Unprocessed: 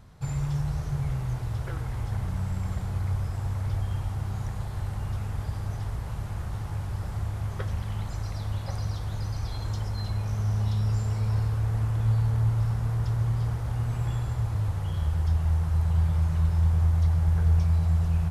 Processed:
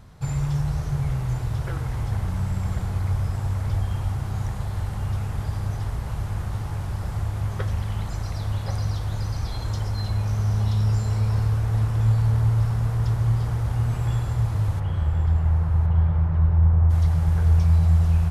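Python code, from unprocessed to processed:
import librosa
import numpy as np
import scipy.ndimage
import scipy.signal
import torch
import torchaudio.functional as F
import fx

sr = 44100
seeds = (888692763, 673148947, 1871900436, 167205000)

y = fx.lowpass(x, sr, hz=fx.line((14.79, 2700.0), (16.89, 1300.0)), slope=12, at=(14.79, 16.89), fade=0.02)
y = y + 10.0 ** (-12.5 / 20.0) * np.pad(y, (int(1066 * sr / 1000.0), 0))[:len(y)]
y = F.gain(torch.from_numpy(y), 4.0).numpy()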